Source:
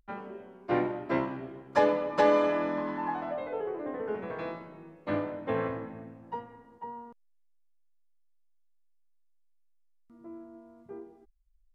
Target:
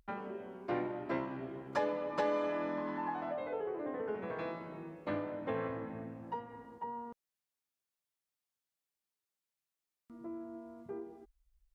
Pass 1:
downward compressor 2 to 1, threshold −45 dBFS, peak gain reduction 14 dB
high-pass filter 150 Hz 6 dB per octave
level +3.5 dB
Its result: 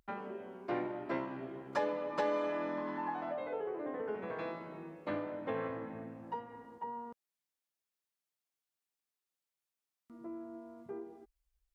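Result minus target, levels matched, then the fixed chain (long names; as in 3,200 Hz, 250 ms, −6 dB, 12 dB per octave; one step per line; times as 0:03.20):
125 Hz band −2.5 dB
downward compressor 2 to 1, threshold −45 dBFS, peak gain reduction 14 dB
high-pass filter 45 Hz 6 dB per octave
level +3.5 dB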